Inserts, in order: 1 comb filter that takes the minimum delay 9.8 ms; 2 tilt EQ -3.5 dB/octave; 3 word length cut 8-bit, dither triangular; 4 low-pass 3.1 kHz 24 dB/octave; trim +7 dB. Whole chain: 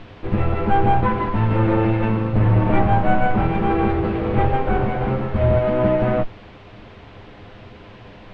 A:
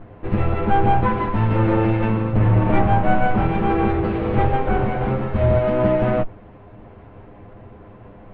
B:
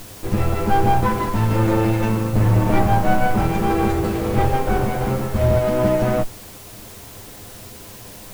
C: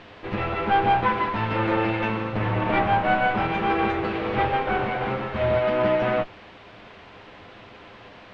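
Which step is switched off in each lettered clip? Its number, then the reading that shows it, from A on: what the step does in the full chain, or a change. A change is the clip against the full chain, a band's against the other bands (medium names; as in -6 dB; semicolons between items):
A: 3, distortion -23 dB; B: 4, 4 kHz band +5.0 dB; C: 2, 125 Hz band -10.0 dB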